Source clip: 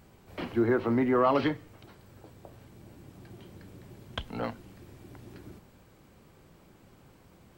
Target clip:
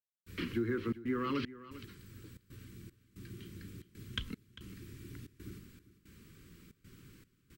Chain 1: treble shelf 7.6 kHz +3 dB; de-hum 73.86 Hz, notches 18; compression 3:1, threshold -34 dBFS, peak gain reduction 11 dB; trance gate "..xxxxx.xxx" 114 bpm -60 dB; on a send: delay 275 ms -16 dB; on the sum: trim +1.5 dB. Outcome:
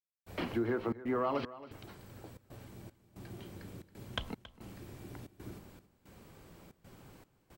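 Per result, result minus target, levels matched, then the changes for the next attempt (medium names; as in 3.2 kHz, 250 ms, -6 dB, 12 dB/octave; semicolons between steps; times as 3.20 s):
echo 123 ms early; 1 kHz band +4.0 dB
change: delay 398 ms -16 dB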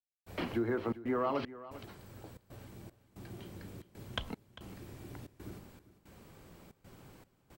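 1 kHz band +4.0 dB
add first: Butterworth band-stop 720 Hz, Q 0.67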